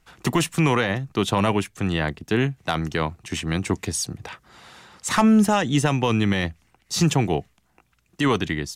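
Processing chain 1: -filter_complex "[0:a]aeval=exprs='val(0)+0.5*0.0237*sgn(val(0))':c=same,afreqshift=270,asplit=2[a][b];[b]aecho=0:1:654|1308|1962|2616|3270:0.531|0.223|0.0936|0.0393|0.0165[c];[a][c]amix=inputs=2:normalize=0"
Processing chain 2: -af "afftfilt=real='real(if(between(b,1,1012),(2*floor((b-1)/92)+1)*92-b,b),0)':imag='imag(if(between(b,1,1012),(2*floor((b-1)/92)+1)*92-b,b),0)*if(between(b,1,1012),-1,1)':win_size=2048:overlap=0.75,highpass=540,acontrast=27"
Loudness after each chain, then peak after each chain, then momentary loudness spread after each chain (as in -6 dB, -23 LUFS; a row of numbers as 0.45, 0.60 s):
-21.0, -16.0 LUFS; -5.5, -2.5 dBFS; 8, 9 LU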